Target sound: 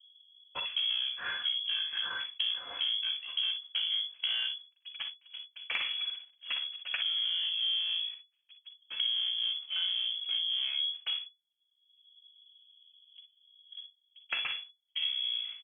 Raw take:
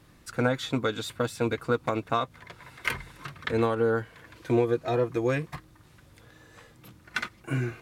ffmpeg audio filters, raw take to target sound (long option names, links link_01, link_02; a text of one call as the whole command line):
ffmpeg -i in.wav -filter_complex "[0:a]aeval=exprs='if(lt(val(0),0),0.447*val(0),val(0))':channel_layout=same,asetrate=22050,aresample=44100,asplit=2[link_01][link_02];[link_02]aeval=exprs='0.0501*(abs(mod(val(0)/0.0501+3,4)-2)-1)':channel_layout=same,volume=-3dB[link_03];[link_01][link_03]amix=inputs=2:normalize=0,adynamicequalizer=threshold=0.00501:dfrequency=2100:dqfactor=1.1:tfrequency=2100:tqfactor=1.1:attack=5:release=100:ratio=0.375:range=2:mode=boostabove:tftype=bell,agate=range=-48dB:threshold=-41dB:ratio=16:detection=peak,acrossover=split=390[link_04][link_05];[link_04]acompressor=mode=upward:threshold=-44dB:ratio=2.5[link_06];[link_06][link_05]amix=inputs=2:normalize=0,lowshelf=frequency=220:gain=11,lowpass=frequency=2900:width_type=q:width=0.5098,lowpass=frequency=2900:width_type=q:width=0.6013,lowpass=frequency=2900:width_type=q:width=0.9,lowpass=frequency=2900:width_type=q:width=2.563,afreqshift=-3400,acompressor=threshold=-33dB:ratio=4,aecho=1:1:43|59:0.282|0.335" out.wav